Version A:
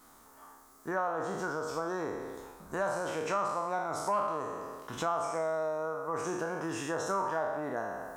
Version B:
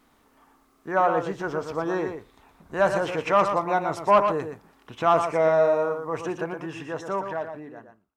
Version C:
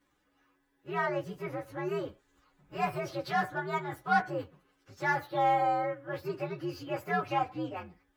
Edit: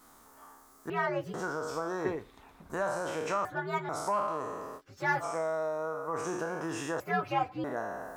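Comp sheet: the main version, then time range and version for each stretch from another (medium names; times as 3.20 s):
A
0.90–1.34 s: from C
2.05–2.70 s: from B
3.45–3.89 s: from C
4.79–5.22 s: from C, crossfade 0.06 s
7.00–7.64 s: from C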